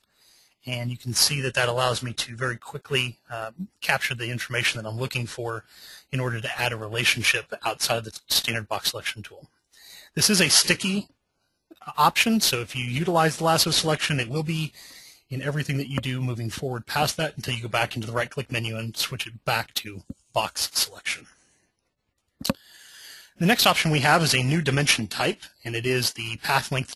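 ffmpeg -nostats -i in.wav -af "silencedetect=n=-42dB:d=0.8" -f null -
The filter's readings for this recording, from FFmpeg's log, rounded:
silence_start: 21.32
silence_end: 22.41 | silence_duration: 1.09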